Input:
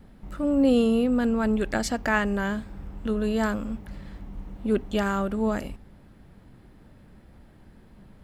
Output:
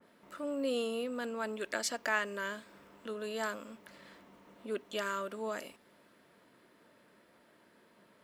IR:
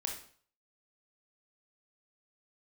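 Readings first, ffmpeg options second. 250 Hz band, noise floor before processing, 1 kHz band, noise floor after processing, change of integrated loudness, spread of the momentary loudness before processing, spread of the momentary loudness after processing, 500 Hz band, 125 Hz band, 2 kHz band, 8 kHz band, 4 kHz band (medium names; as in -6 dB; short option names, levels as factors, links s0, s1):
-18.5 dB, -53 dBFS, -8.5 dB, -65 dBFS, -11.5 dB, 20 LU, 19 LU, -10.0 dB, under -20 dB, -6.0 dB, -3.0 dB, -4.0 dB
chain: -filter_complex "[0:a]asuperstop=centerf=790:order=4:qfactor=6.4,asplit=2[s0][s1];[s1]acompressor=threshold=0.0141:ratio=6,volume=1.26[s2];[s0][s2]amix=inputs=2:normalize=0,highpass=450,adynamicequalizer=threshold=0.01:dfrequency=2300:dqfactor=0.7:tfrequency=2300:tqfactor=0.7:attack=5:release=100:ratio=0.375:range=2:mode=boostabove:tftype=highshelf,volume=0.355"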